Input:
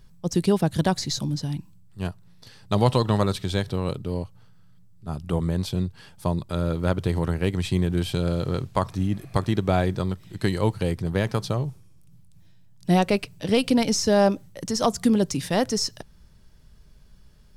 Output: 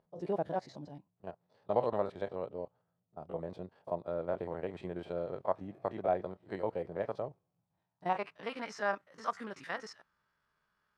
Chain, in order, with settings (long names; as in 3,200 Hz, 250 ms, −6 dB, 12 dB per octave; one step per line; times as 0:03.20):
spectrum averaged block by block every 50 ms
dynamic equaliser 2,000 Hz, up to +6 dB, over −47 dBFS, Q 1.4
band-pass filter sweep 630 Hz → 1,300 Hz, 0:11.64–0:13.80
tempo change 1.6×
level −2 dB